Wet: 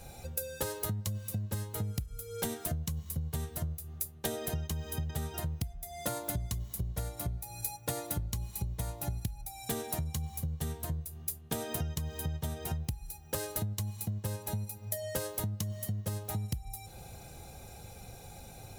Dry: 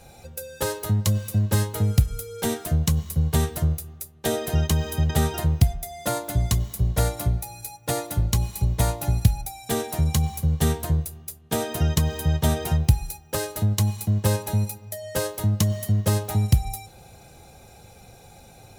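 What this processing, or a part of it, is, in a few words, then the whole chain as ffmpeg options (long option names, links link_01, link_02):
ASMR close-microphone chain: -af "lowshelf=frequency=110:gain=5.5,acompressor=threshold=-30dB:ratio=10,highshelf=frequency=9300:gain=6.5,volume=-2.5dB"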